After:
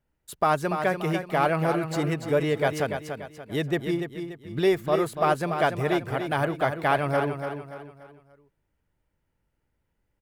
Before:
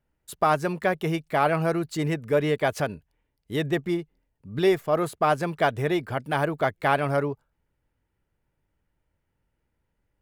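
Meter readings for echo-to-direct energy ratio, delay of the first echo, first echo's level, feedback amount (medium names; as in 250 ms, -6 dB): -7.0 dB, 289 ms, -7.5 dB, 39%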